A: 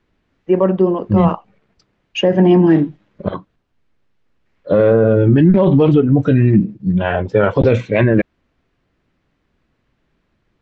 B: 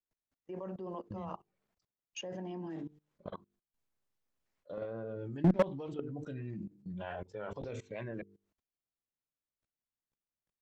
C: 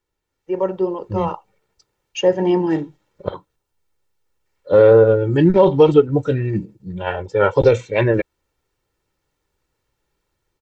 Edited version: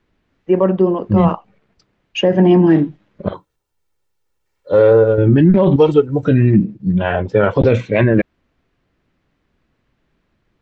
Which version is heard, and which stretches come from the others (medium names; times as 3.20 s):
A
3.33–5.18 s: from C
5.76–6.23 s: from C
not used: B